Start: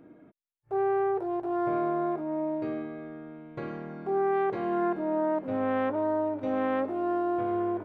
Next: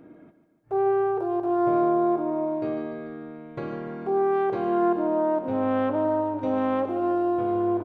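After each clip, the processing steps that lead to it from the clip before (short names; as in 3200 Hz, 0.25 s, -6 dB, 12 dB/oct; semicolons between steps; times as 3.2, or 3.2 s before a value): dynamic EQ 1900 Hz, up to -7 dB, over -50 dBFS, Q 1.9; feedback echo 0.146 s, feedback 56%, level -11.5 dB; gain +4 dB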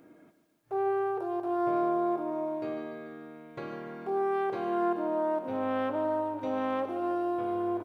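tilt +2 dB/oct; bit-crush 12-bit; gain -4 dB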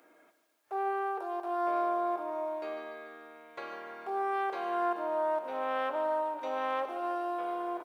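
HPF 670 Hz 12 dB/oct; gain +2.5 dB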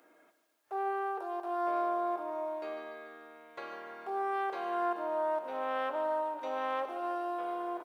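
notch 2300 Hz, Q 27; gain -1.5 dB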